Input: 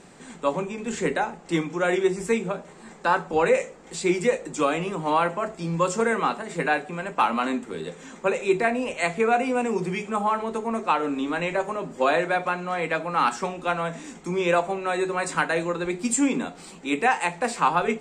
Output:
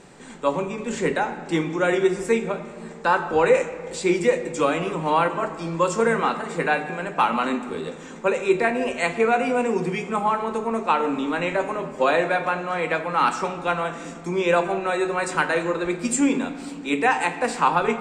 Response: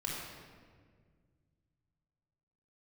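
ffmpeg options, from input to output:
-filter_complex "[0:a]asplit=2[a][b];[b]lowpass=6k[c];[1:a]atrim=start_sample=2205[d];[c][d]afir=irnorm=-1:irlink=0,volume=-9.5dB[e];[a][e]amix=inputs=2:normalize=0"

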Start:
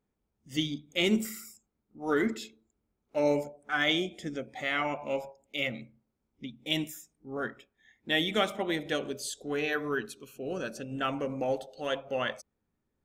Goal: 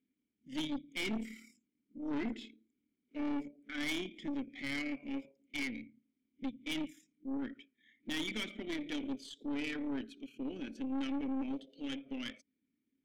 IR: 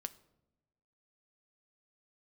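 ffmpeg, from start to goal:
-filter_complex "[0:a]asplit=2[a][b];[b]acompressor=threshold=-39dB:ratio=6,volume=-2dB[c];[a][c]amix=inputs=2:normalize=0,tremolo=f=36:d=0.4,asplit=3[d][e][f];[d]bandpass=f=270:t=q:w=8,volume=0dB[g];[e]bandpass=f=2.29k:t=q:w=8,volume=-6dB[h];[f]bandpass=f=3.01k:t=q:w=8,volume=-9dB[i];[g][h][i]amix=inputs=3:normalize=0,aeval=exprs='(tanh(112*val(0)+0.45)-tanh(0.45))/112':c=same,volume=8dB"

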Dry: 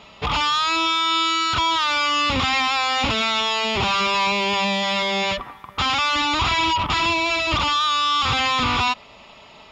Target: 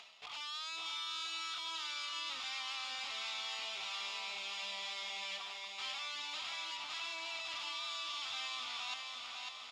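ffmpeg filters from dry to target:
-filter_complex "[0:a]aeval=exprs='if(lt(val(0),0),0.447*val(0),val(0))':c=same,equalizer=f=710:w=4.8:g=8.5,areverse,acompressor=threshold=-33dB:ratio=5,areverse,lowpass=5.1k,aderivative,asplit=2[a][b];[b]aecho=0:1:550|1018|1415|1753|2040:0.631|0.398|0.251|0.158|0.1[c];[a][c]amix=inputs=2:normalize=0,acompressor=mode=upward:threshold=-55dB:ratio=2.5,volume=2dB"

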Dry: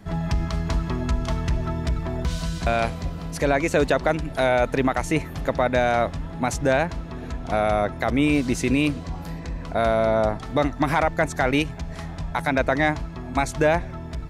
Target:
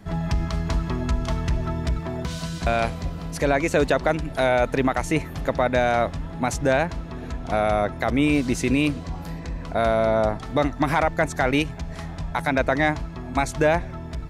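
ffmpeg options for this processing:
-filter_complex "[0:a]asettb=1/sr,asplit=3[a][b][c];[a]atrim=end=1.984[d];[b]atrim=start=1.98:end=2.62,asetpts=PTS-STARTPTS,afade=t=in:d=0.004:c=qsin,afade=t=out:st=0.636:d=0.004:c=qsin,highpass=94[e];[c]atrim=start=2.616[f];[d][e]acrossfade=d=0.004:c1=hsin:c2=qsin[g];[g][f]acrossfade=d=0.004:c1=qsin:c2=hsin"

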